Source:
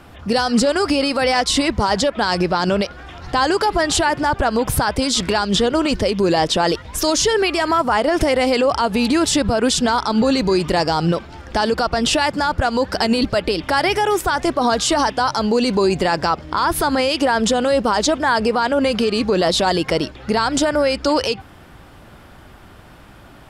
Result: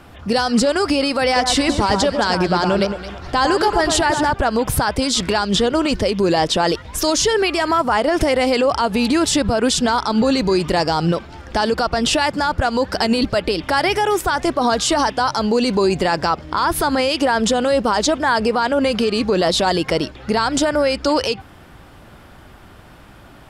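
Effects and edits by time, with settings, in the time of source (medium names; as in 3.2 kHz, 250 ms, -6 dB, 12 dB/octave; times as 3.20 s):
1.25–4.32 s: echo whose repeats swap between lows and highs 110 ms, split 1.6 kHz, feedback 51%, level -5 dB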